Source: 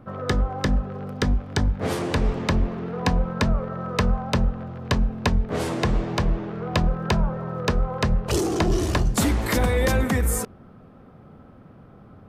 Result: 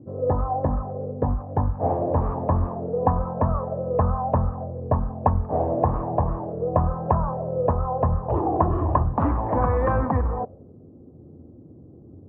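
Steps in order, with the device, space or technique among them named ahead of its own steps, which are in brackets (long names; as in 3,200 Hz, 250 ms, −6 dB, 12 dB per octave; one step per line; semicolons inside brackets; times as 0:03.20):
envelope filter bass rig (envelope-controlled low-pass 340–1,200 Hz up, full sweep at −16.5 dBFS; loudspeaker in its box 60–2,300 Hz, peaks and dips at 83 Hz +7 dB, 200 Hz −7 dB, 390 Hz −7 dB, 1,400 Hz −9 dB, 2,100 Hz −9 dB)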